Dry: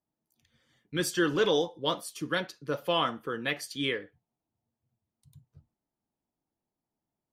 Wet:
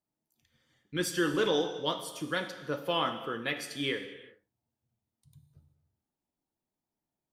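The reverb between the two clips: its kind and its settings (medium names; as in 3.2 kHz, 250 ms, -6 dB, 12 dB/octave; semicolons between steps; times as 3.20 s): gated-style reverb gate 420 ms falling, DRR 7 dB; trim -2.5 dB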